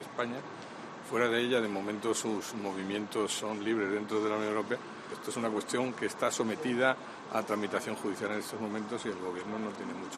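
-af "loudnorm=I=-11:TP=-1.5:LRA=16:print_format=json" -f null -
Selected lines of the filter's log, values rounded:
"input_i" : "-34.0",
"input_tp" : "-12.6",
"input_lra" : "3.6",
"input_thresh" : "-44.1",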